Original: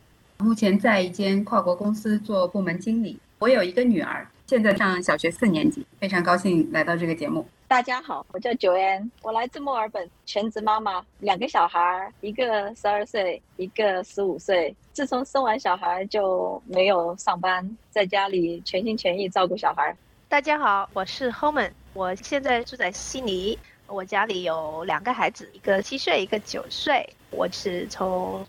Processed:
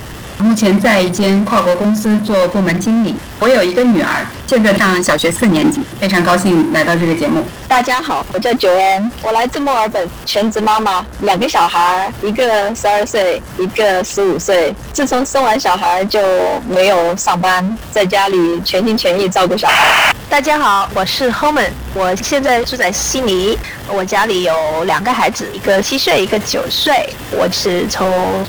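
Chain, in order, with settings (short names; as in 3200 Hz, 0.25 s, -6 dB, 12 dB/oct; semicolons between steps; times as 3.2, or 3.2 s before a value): painted sound noise, 19.68–20.12, 590–3100 Hz -19 dBFS; power-law curve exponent 0.5; buzz 60 Hz, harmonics 31, -45 dBFS -1 dB/oct; gain +3.5 dB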